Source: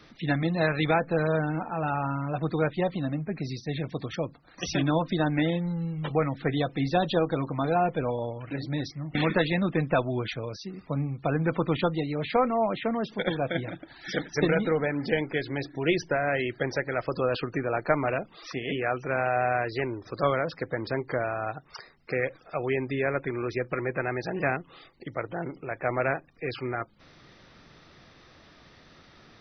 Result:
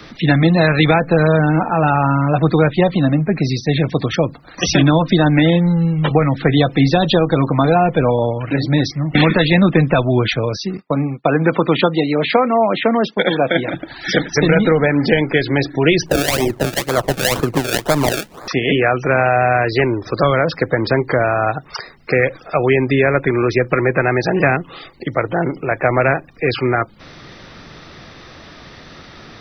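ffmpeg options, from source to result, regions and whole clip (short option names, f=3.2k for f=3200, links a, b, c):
-filter_complex "[0:a]asettb=1/sr,asplit=3[a][b][c];[a]atrim=end=10.774[d];[b]atrim=start=10.77:end=13.74,asetpts=PTS-STARTPTS,afade=t=in:d=0.004:c=qsin,afade=t=out:st=2.966:d=0.004:c=qsin,highpass=210,agate=range=-33dB:threshold=-39dB:ratio=3:release=100:detection=peak[e];[c]atrim=start=13.736[f];[d][e]acrossfade=d=0.004:c1=hsin:c2=qsin[g];[g][f]acrossfade=d=0.004:c1=qsin:c2=hsin,asettb=1/sr,asplit=3[h][i][j];[h]atrim=end=16.064[k];[i]atrim=start=16.06:end=18.48,asetpts=PTS-STARTPTS,afade=t=in:d=0.004:c=qsin,afade=t=out:st=2.416:d=0.004:c=qsin,acrusher=samples=30:mix=1:aa=0.000001:lfo=1:lforange=30:lforate=2,acrossover=split=1500[l][m];[l]aeval=exprs='val(0)*(1-0.7/2+0.7/2*cos(2*PI*2.1*n/s))':c=same[n];[m]aeval=exprs='val(0)*(1-0.7/2-0.7/2*cos(2*PI*2.1*n/s))':c=same[o];[n][o]amix=inputs=2:normalize=0[p];[j]atrim=start=18.476[q];[k][p]acrossfade=d=0.004:c1=hsin:c2=qsin[r];[r][q]acrossfade=d=0.004:c1=qsin:c2=hsin,acrossover=split=180|3000[s][t][u];[t]acompressor=threshold=-26dB:ratio=6[v];[s][v][u]amix=inputs=3:normalize=0,alimiter=level_in=16.5dB:limit=-1dB:release=50:level=0:latency=1,volume=-1dB"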